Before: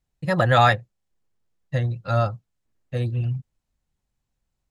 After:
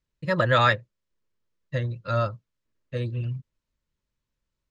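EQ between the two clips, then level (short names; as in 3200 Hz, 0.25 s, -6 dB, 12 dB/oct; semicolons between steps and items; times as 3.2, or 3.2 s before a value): Butterworth band-stop 760 Hz, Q 3.6; LPF 5800 Hz 12 dB/oct; tone controls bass -4 dB, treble +1 dB; -1.0 dB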